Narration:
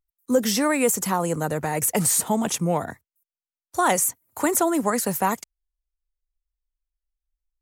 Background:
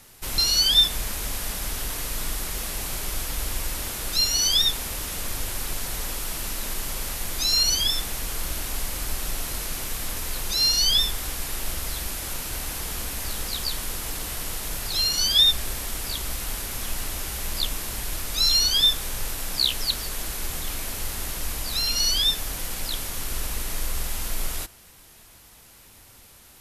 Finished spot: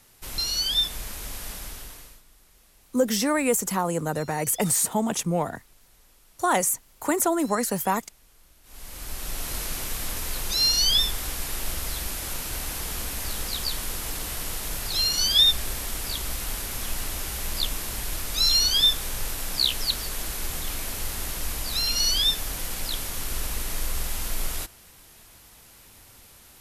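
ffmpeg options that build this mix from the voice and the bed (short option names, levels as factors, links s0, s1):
-filter_complex "[0:a]adelay=2650,volume=0.794[s0];[1:a]volume=11.2,afade=t=out:st=1.53:d=0.69:silence=0.0841395,afade=t=in:st=8.63:d=0.94:silence=0.0446684[s1];[s0][s1]amix=inputs=2:normalize=0"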